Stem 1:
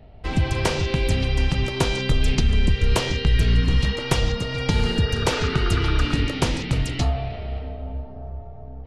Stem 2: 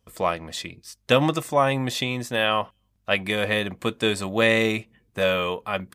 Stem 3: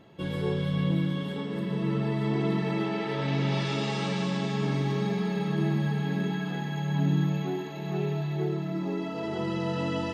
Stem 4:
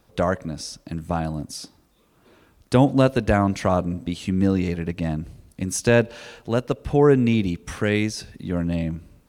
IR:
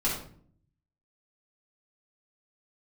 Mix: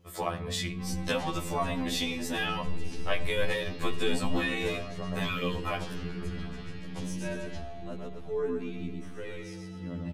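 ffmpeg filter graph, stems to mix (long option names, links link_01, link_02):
-filter_complex "[0:a]adelay=550,volume=-19.5dB,asplit=2[link_01][link_02];[link_02]volume=-13dB[link_03];[1:a]acompressor=threshold=-30dB:ratio=4,volume=2.5dB,asplit=2[link_04][link_05];[link_05]volume=-18dB[link_06];[2:a]lowpass=4700,lowshelf=frequency=230:gain=12,volume=-14dB[link_07];[3:a]adelay=1350,volume=-17.5dB,asplit=2[link_08][link_09];[link_09]volume=-4dB[link_10];[4:a]atrim=start_sample=2205[link_11];[link_03][link_06]amix=inputs=2:normalize=0[link_12];[link_12][link_11]afir=irnorm=-1:irlink=0[link_13];[link_10]aecho=0:1:119|238|357|476|595:1|0.38|0.144|0.0549|0.0209[link_14];[link_01][link_04][link_07][link_08][link_13][link_14]amix=inputs=6:normalize=0,afftfilt=real='re*2*eq(mod(b,4),0)':imag='im*2*eq(mod(b,4),0)':win_size=2048:overlap=0.75"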